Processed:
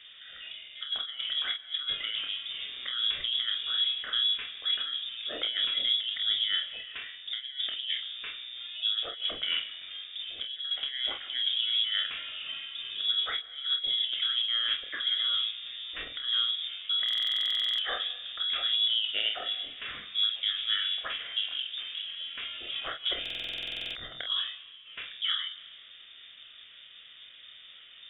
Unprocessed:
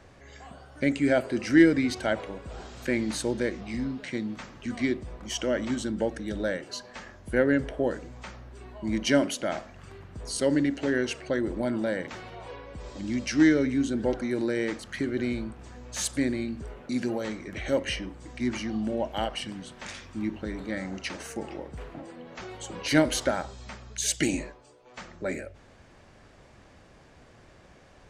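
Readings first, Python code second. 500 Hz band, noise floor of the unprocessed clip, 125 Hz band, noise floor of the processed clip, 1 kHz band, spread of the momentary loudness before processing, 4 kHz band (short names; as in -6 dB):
-22.0 dB, -55 dBFS, under -25 dB, -51 dBFS, -7.5 dB, 18 LU, +14.0 dB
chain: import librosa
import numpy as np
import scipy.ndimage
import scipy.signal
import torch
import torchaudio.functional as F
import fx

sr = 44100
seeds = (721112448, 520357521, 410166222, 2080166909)

y = fx.peak_eq(x, sr, hz=84.0, db=-14.5, octaves=0.55)
y = fx.notch(y, sr, hz=2700.0, q=5.9)
y = fx.over_compress(y, sr, threshold_db=-30.0, ratio=-0.5)
y = fx.air_absorb(y, sr, metres=330.0)
y = fx.room_early_taps(y, sr, ms=(28, 48), db=(-6.5, -8.5))
y = fx.rev_freeverb(y, sr, rt60_s=1.5, hf_ratio=0.7, predelay_ms=100, drr_db=17.5)
y = fx.freq_invert(y, sr, carrier_hz=3600)
y = fx.buffer_glitch(y, sr, at_s=(17.04, 23.21), block=2048, repeats=15)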